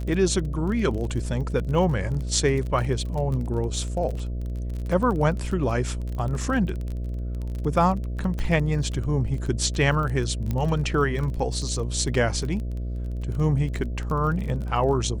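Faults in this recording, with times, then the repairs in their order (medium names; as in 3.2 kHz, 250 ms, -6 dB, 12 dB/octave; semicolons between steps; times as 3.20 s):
buzz 60 Hz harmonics 11 -29 dBFS
crackle 26 per s -30 dBFS
8.39 s: pop -19 dBFS
10.51 s: pop -15 dBFS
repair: de-click; de-hum 60 Hz, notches 11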